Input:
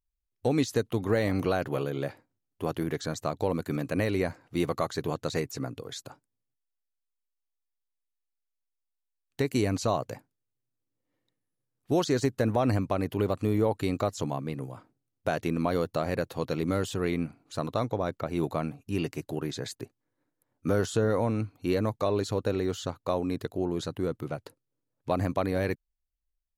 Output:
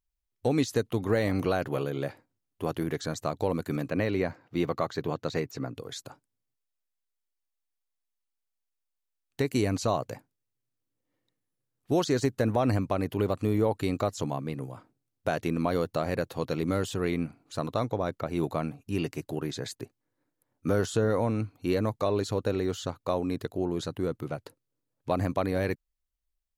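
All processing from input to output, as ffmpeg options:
ffmpeg -i in.wav -filter_complex "[0:a]asettb=1/sr,asplit=3[link_01][link_02][link_03];[link_01]atrim=end=3.884[link_04];[link_02]atrim=start=3.88:end=5.75,asetpts=PTS-STARTPTS,afade=type=in:duration=0.004:curve=qsin,afade=type=out:start_time=1.866:duration=0.004:curve=qsin,highpass=83,equalizer=frequency=9700:width=1:gain=-14[link_05];[link_03]atrim=start=5.746[link_06];[link_04][link_05]acrossfade=duration=0.004:curve1=hsin:curve2=qsin[link_07];[link_07][link_06]acrossfade=duration=0.004:curve1=qsin:curve2=hsin" out.wav

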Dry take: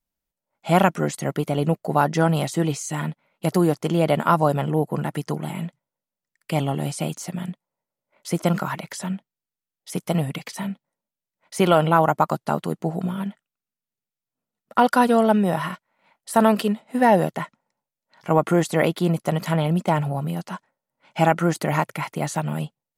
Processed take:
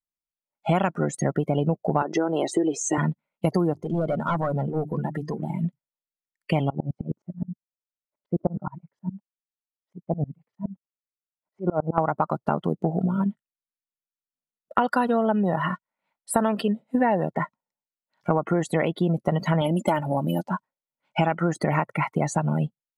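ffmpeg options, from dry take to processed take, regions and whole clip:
ffmpeg -i in.wav -filter_complex "[0:a]asettb=1/sr,asplit=3[link_01][link_02][link_03];[link_01]atrim=end=2.024[link_04];[link_02]atrim=start=2.02:end=2.98,asetpts=PTS-STARTPTS,afade=type=in:duration=0.004:curve=qsin,afade=type=out:start_time=0.956:duration=0.004:curve=qsin,acompressor=threshold=-21dB:ratio=6:attack=3.2:release=140:knee=1:detection=peak,highpass=frequency=350:width_type=q:width=3.1[link_05];[link_03]atrim=start=2.976[link_06];[link_04][link_05]acrossfade=duration=0.004:curve1=hsin:curve2=qsin[link_07];[link_07][link_06]acrossfade=duration=0.004:curve1=qsin:curve2=hsin,asettb=1/sr,asplit=3[link_08][link_09][link_10];[link_08]atrim=end=3.734[link_11];[link_09]atrim=start=3.73:end=5.64,asetpts=PTS-STARTPTS,afade=type=in:duration=0.004:curve=qsin,afade=type=out:start_time=1.906:duration=0.004:curve=qsin,volume=19dB,asoftclip=hard,volume=-19dB,acompressor=threshold=-31dB:ratio=2.5:attack=3.2:release=140:knee=1:detection=peak,bandreject=frequency=50:width_type=h:width=6,bandreject=frequency=100:width_type=h:width=6,bandreject=frequency=150:width_type=h:width=6,bandreject=frequency=200:width_type=h:width=6,bandreject=frequency=250:width_type=h:width=6,bandreject=frequency=300:width_type=h:width=6,bandreject=frequency=350:width_type=h:width=6,bandreject=frequency=400:width_type=h:width=6[link_12];[link_10]atrim=start=5.636[link_13];[link_11][link_12]acrossfade=duration=0.004:curve1=hsin:curve2=qsin[link_14];[link_14][link_13]acrossfade=duration=0.004:curve1=qsin:curve2=hsin,asettb=1/sr,asplit=3[link_15][link_16][link_17];[link_15]atrim=end=6.704[link_18];[link_16]atrim=start=6.7:end=11.98,asetpts=PTS-STARTPTS,afade=type=in:duration=0.004:curve=qsin,afade=type=out:start_time=5.276:duration=0.004:curve=qsin,lowpass=1100,aeval=exprs='val(0)*pow(10,-30*if(lt(mod(-9.6*n/s,1),2*abs(-9.6)/1000),1-mod(-9.6*n/s,1)/(2*abs(-9.6)/1000),(mod(-9.6*n/s,1)-2*abs(-9.6)/1000)/(1-2*abs(-9.6)/1000))/20)':channel_layout=same[link_19];[link_17]atrim=start=11.976[link_20];[link_18][link_19]acrossfade=duration=0.004:curve1=hsin:curve2=qsin[link_21];[link_21][link_20]acrossfade=duration=0.004:curve1=qsin:curve2=hsin,asettb=1/sr,asplit=3[link_22][link_23][link_24];[link_22]atrim=end=19.614[link_25];[link_23]atrim=start=19.61:end=20.43,asetpts=PTS-STARTPTS,afade=type=in:duration=0.004:curve=qsin,afade=type=out:start_time=0.816:duration=0.004:curve=qsin,highshelf=frequency=6100:gain=11.5,aecho=1:1:3.4:0.54,atrim=end_sample=36162[link_26];[link_24]atrim=start=20.426[link_27];[link_25][link_26]acrossfade=duration=0.004:curve1=hsin:curve2=qsin[link_28];[link_28][link_27]acrossfade=duration=0.004:curve1=qsin:curve2=hsin,afftdn=noise_reduction=24:noise_floor=-32,acompressor=threshold=-26dB:ratio=6,volume=6.5dB" out.wav

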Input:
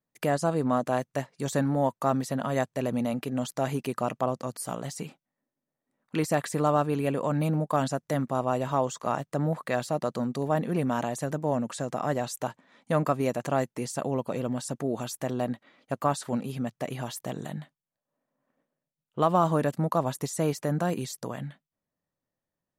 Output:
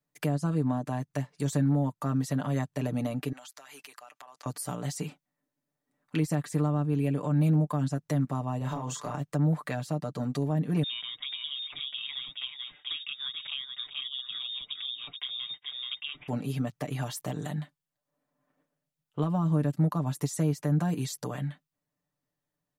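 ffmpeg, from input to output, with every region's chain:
ffmpeg -i in.wav -filter_complex "[0:a]asettb=1/sr,asplit=3[link_01][link_02][link_03];[link_01]atrim=end=3.324[link_04];[link_02]atrim=start=3.32:end=4.46,asetpts=PTS-STARTPTS,afade=type=in:duration=0.004:curve=qsin,afade=type=out:start_time=1.136:duration=0.004:curve=qsin,highpass=1100,acompressor=threshold=-45dB:ratio=16:attack=3.2:release=140:knee=1:detection=peak[link_05];[link_03]atrim=start=4.456[link_06];[link_04][link_05]acrossfade=duration=0.004:curve1=hsin:curve2=qsin[link_07];[link_07][link_06]acrossfade=duration=0.004:curve1=qsin:curve2=hsin,asettb=1/sr,asplit=3[link_08][link_09][link_10];[link_08]atrim=end=8.584[link_11];[link_09]atrim=start=8.58:end=9.14,asetpts=PTS-STARTPTS,afade=type=in:duration=0.004:curve=qsin,afade=type=out:start_time=0.556:duration=0.004:curve=qsin,acompressor=threshold=-29dB:ratio=3:attack=3.2:release=140:knee=1:detection=peak,asplit=2[link_12][link_13];[link_13]adelay=32,volume=-3dB[link_14];[link_12][link_14]amix=inputs=2:normalize=0,atrim=end_sample=24696[link_15];[link_10]atrim=start=9.136[link_16];[link_11][link_15]acrossfade=duration=0.004:curve1=hsin:curve2=qsin[link_17];[link_17][link_16]acrossfade=duration=0.004:curve1=qsin:curve2=hsin,asettb=1/sr,asplit=3[link_18][link_19][link_20];[link_18]atrim=end=10.834[link_21];[link_19]atrim=start=10.83:end=16.28,asetpts=PTS-STARTPTS,afade=type=in:duration=0.004:curve=qsin,afade=type=out:start_time=5.446:duration=0.004:curve=qsin,highpass=160,aecho=1:1:429:0.398,atrim=end_sample=240345,lowpass=frequency=3300:width_type=q:width=0.5098,lowpass=frequency=3300:width_type=q:width=0.6013,lowpass=frequency=3300:width_type=q:width=0.9,lowpass=frequency=3300:width_type=q:width=2.563,afreqshift=-3900[link_22];[link_20]atrim=start=16.276[link_23];[link_21][link_22]acrossfade=duration=0.004:curve1=hsin:curve2=qsin[link_24];[link_24][link_23]acrossfade=duration=0.004:curve1=qsin:curve2=hsin,equalizer=frequency=520:width_type=o:width=0.77:gain=-2.5,aecho=1:1:6.8:0.71,acrossover=split=280[link_25][link_26];[link_26]acompressor=threshold=-33dB:ratio=10[link_27];[link_25][link_27]amix=inputs=2:normalize=0" out.wav

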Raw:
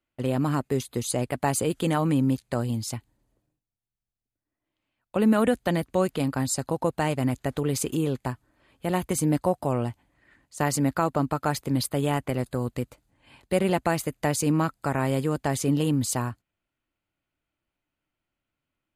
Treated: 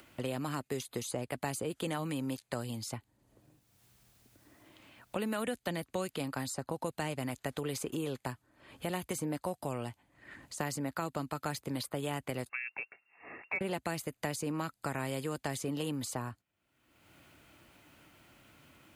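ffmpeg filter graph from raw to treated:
ffmpeg -i in.wav -filter_complex "[0:a]asettb=1/sr,asplit=3[link_01][link_02][link_03];[link_01]atrim=end=12.494[link_04];[link_02]atrim=start=12.49:end=13.61,asetpts=PTS-STARTPTS,afade=type=in:duration=0.004:curve=qsin,afade=type=out:start_time=1.116:duration=0.004:curve=qsin,lowshelf=frequency=500:width_type=q:width=1.5:gain=-7,lowpass=frequency=2400:width_type=q:width=0.5098,lowpass=frequency=2400:width_type=q:width=0.6013,lowpass=frequency=2400:width_type=q:width=0.9,lowpass=frequency=2400:width_type=q:width=2.563,afreqshift=-2800,asoftclip=type=hard:threshold=-15dB[link_05];[link_03]atrim=start=13.606[link_06];[link_04][link_05]acrossfade=duration=0.004:curve1=hsin:curve2=qsin[link_07];[link_07][link_06]acrossfade=duration=0.004:curve1=qsin:curve2=hsin,acompressor=mode=upward:threshold=-36dB:ratio=2.5,highpass=72,acrossover=split=430|2000[link_08][link_09][link_10];[link_08]acompressor=threshold=-38dB:ratio=4[link_11];[link_09]acompressor=threshold=-37dB:ratio=4[link_12];[link_10]acompressor=threshold=-40dB:ratio=4[link_13];[link_11][link_12][link_13]amix=inputs=3:normalize=0,volume=-1.5dB" out.wav

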